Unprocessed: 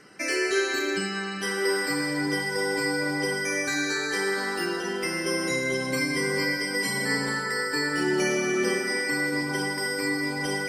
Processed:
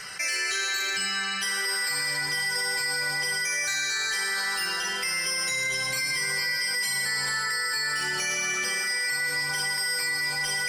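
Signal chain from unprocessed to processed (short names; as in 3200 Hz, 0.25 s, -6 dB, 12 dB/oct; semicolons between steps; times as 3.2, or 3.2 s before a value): passive tone stack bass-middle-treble 10-0-10; limiter -26.5 dBFS, peak gain reduction 6 dB; in parallel at -11 dB: hard clip -38 dBFS, distortion -8 dB; on the sum: fast leveller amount 50%; gain +5.5 dB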